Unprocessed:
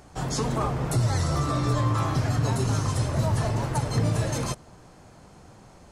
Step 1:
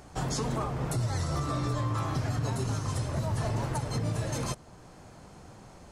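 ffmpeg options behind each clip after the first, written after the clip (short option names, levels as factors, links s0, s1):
-af "alimiter=limit=0.0841:level=0:latency=1:release=464"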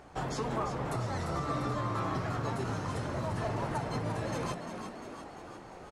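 -filter_complex "[0:a]bass=f=250:g=-7,treble=f=4000:g=-11,areverse,acompressor=mode=upward:threshold=0.00562:ratio=2.5,areverse,asplit=9[s0][s1][s2][s3][s4][s5][s6][s7][s8];[s1]adelay=347,afreqshift=59,volume=0.398[s9];[s2]adelay=694,afreqshift=118,volume=0.245[s10];[s3]adelay=1041,afreqshift=177,volume=0.153[s11];[s4]adelay=1388,afreqshift=236,volume=0.0944[s12];[s5]adelay=1735,afreqshift=295,volume=0.0589[s13];[s6]adelay=2082,afreqshift=354,volume=0.0363[s14];[s7]adelay=2429,afreqshift=413,volume=0.0226[s15];[s8]adelay=2776,afreqshift=472,volume=0.014[s16];[s0][s9][s10][s11][s12][s13][s14][s15][s16]amix=inputs=9:normalize=0"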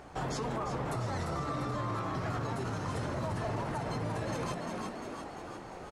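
-af "alimiter=level_in=1.88:limit=0.0631:level=0:latency=1:release=65,volume=0.531,volume=1.41"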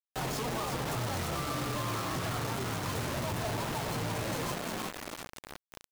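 -af "acrusher=bits=5:mix=0:aa=0.000001"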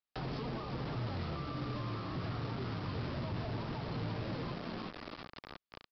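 -filter_complex "[0:a]equalizer=f=1200:w=7.8:g=3,aresample=11025,asoftclip=type=tanh:threshold=0.0178,aresample=44100,acrossover=split=400[s0][s1];[s1]acompressor=threshold=0.00447:ratio=6[s2];[s0][s2]amix=inputs=2:normalize=0,volume=1.5"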